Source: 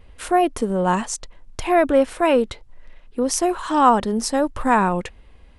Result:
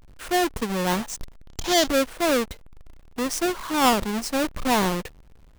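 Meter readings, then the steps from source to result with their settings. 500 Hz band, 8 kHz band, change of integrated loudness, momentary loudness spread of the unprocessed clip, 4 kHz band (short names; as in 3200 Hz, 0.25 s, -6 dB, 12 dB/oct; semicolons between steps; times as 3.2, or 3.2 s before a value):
-5.5 dB, -0.5 dB, -4.0 dB, 14 LU, +6.0 dB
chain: half-waves squared off; spectral gain 1.45–1.88, 2900–7400 Hz +8 dB; gain -8.5 dB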